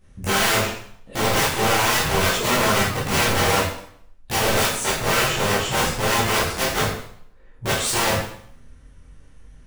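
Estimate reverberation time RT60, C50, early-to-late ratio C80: 0.65 s, 2.5 dB, 6.5 dB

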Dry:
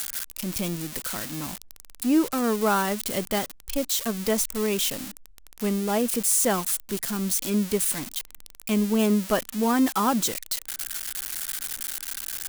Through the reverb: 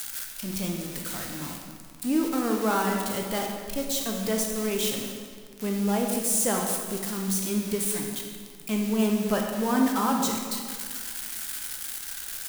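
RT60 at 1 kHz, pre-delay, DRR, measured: 2.0 s, 14 ms, 0.5 dB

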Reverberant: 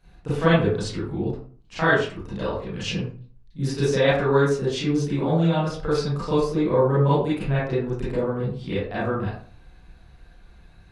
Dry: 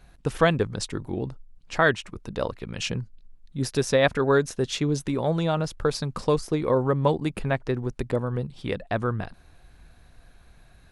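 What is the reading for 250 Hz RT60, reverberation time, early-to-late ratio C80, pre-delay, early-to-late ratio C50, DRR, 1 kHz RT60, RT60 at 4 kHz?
0.50 s, 0.45 s, 5.5 dB, 30 ms, −1.0 dB, −11.0 dB, 0.45 s, 0.25 s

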